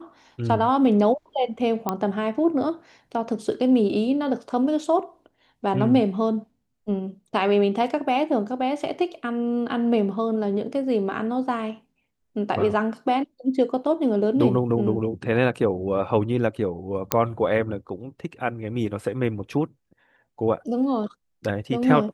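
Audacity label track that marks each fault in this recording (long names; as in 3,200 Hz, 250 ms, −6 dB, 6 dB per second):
1.890000	1.890000	click −10 dBFS
17.120000	17.120000	click −2 dBFS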